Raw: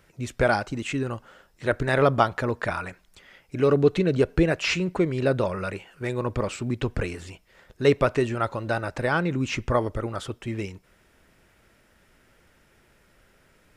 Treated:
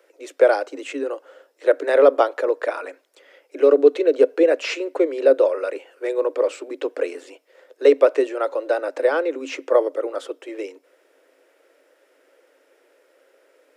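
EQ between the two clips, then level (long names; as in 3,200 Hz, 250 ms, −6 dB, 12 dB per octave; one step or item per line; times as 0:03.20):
Chebyshev high-pass filter 270 Hz, order 10
parametric band 510 Hz +14.5 dB 0.63 octaves
−1.5 dB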